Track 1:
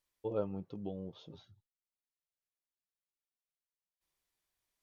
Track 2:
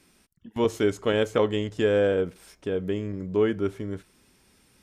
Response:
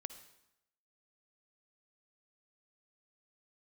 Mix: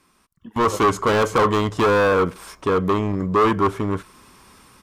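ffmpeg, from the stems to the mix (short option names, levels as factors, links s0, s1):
-filter_complex "[0:a]tremolo=f=10:d=0.89,adelay=350,volume=0.398[s0];[1:a]asoftclip=type=hard:threshold=0.0473,volume=0.794[s1];[s0][s1]amix=inputs=2:normalize=0,equalizer=f=1100:w=2.7:g=15,dynaudnorm=f=110:g=9:m=3.98"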